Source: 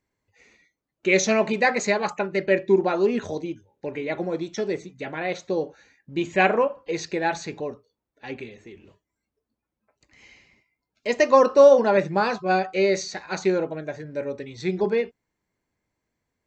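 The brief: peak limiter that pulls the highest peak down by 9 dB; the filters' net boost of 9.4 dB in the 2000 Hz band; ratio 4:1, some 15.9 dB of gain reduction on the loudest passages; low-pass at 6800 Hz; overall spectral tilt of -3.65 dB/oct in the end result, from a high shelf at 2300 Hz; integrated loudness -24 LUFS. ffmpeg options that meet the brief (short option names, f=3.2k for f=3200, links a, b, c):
-af "lowpass=6.8k,equalizer=f=2k:t=o:g=7.5,highshelf=f=2.3k:g=7.5,acompressor=threshold=-28dB:ratio=4,volume=9dB,alimiter=limit=-12dB:level=0:latency=1"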